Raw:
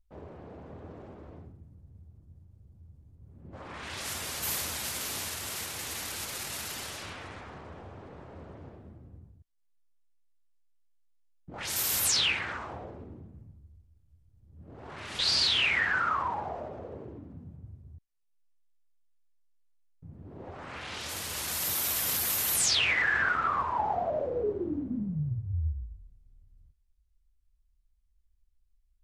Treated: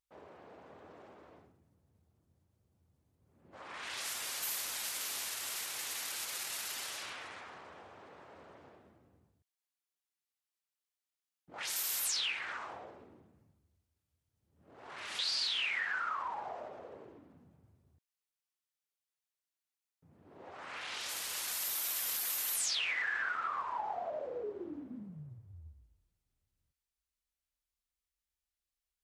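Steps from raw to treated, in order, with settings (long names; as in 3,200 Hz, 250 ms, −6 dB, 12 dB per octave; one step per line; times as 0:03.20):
high-pass filter 1,000 Hz 6 dB per octave
downward compressor 2 to 1, threshold −38 dBFS, peak gain reduction 8.5 dB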